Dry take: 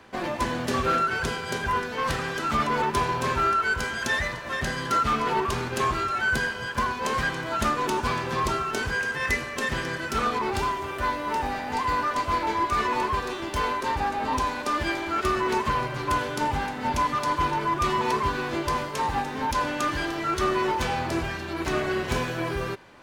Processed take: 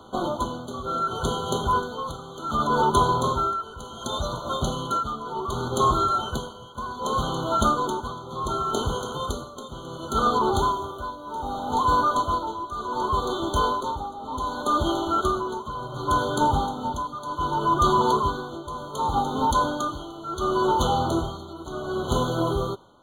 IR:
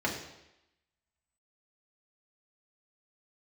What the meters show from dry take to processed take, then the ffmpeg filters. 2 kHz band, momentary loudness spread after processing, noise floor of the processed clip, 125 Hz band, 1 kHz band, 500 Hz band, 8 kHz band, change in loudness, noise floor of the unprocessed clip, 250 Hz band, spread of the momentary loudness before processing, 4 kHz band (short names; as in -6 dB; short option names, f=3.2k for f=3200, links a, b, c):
-10.5 dB, 13 LU, -40 dBFS, +2.0 dB, +1.5 dB, +2.0 dB, 0.0 dB, +1.0 dB, -34 dBFS, +2.0 dB, 4 LU, +0.5 dB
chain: -af "tremolo=f=0.67:d=0.79,afftfilt=real='re*eq(mod(floor(b*sr/1024/1500),2),0)':imag='im*eq(mod(floor(b*sr/1024/1500),2),0)':win_size=1024:overlap=0.75,volume=5.5dB"